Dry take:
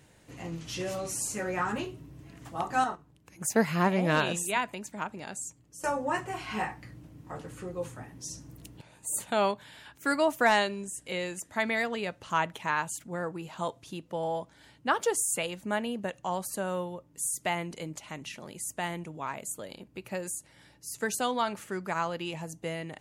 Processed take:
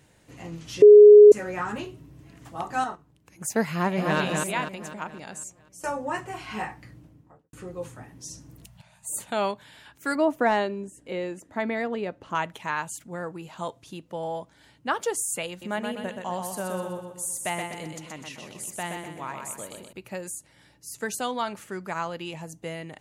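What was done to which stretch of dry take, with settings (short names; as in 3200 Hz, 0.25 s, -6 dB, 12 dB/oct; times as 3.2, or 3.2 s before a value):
0.82–1.32 bleep 417 Hz -6 dBFS
3.72–4.18 echo throw 0.25 s, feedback 50%, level -3.5 dB
6.89–7.53 studio fade out
8.65–9.09 Chebyshev band-stop 200–620 Hz, order 3
10.15–12.35 EQ curve 160 Hz 0 dB, 280 Hz +7 dB, 8600 Hz -12 dB
15.49–19.93 feedback echo 0.125 s, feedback 45%, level -5 dB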